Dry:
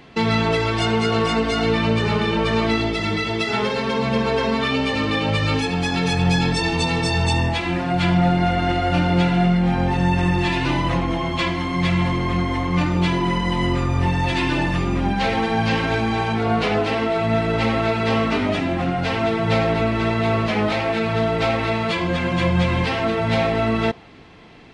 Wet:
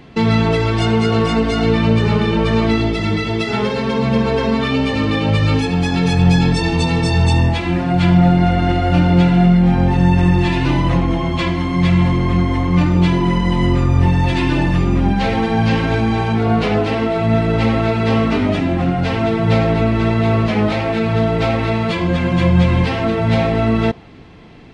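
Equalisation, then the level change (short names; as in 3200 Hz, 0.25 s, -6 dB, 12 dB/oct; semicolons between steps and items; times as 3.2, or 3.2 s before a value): low shelf 380 Hz +8 dB; 0.0 dB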